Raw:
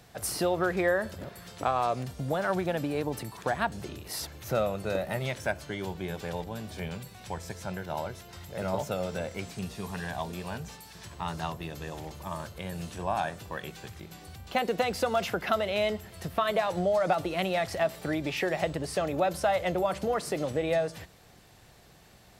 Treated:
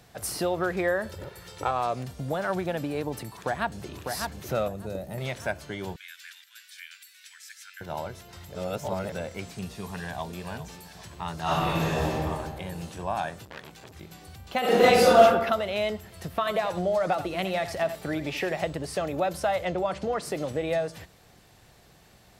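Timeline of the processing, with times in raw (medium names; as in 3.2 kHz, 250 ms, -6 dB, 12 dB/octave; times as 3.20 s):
1.09–1.71 s: comb 2.2 ms, depth 62%
3.33–3.95 s: echo throw 600 ms, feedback 40%, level -4.5 dB
4.68–5.18 s: peaking EQ 1.9 kHz -13.5 dB 2.9 oct
5.96–7.81 s: steep high-pass 1.5 kHz 48 dB/octave
8.55–9.12 s: reverse
10.04–10.47 s: echo throw 400 ms, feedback 50%, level -13 dB
11.42–12.11 s: reverb throw, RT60 2 s, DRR -12 dB
13.45–13.94 s: transformer saturation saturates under 2.5 kHz
14.60–15.21 s: reverb throw, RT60 0.9 s, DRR -11 dB
16.38–18.53 s: delay 84 ms -12 dB
19.65–20.22 s: low-pass 6.8 kHz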